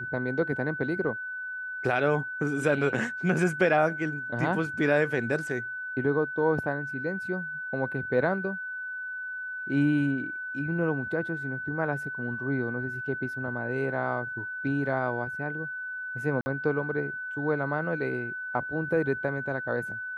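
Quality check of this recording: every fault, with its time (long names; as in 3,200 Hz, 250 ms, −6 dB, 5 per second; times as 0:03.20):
whistle 1,500 Hz −33 dBFS
0:16.41–0:16.46: drop-out 50 ms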